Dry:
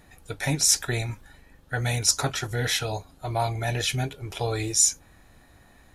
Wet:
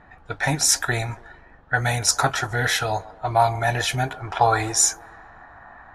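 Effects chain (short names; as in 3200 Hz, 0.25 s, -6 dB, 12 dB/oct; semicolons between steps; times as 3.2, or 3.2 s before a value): low-pass opened by the level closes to 2200 Hz, open at -23.5 dBFS; band shelf 1100 Hz +8.5 dB, from 4.06 s +16 dB; band-limited delay 0.14 s, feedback 57%, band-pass 610 Hz, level -18 dB; gain +1.5 dB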